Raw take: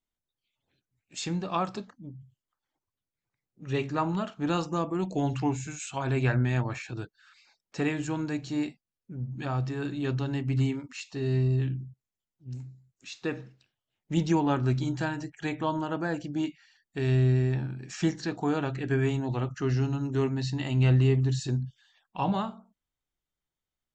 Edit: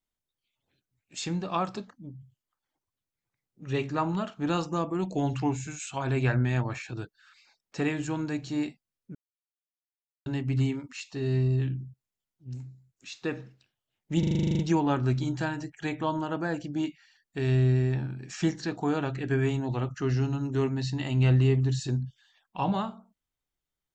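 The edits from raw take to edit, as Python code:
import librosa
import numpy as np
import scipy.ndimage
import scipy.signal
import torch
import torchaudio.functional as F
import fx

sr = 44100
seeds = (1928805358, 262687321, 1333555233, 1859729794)

y = fx.edit(x, sr, fx.silence(start_s=9.15, length_s=1.11),
    fx.stutter(start_s=14.19, slice_s=0.04, count=11), tone=tone)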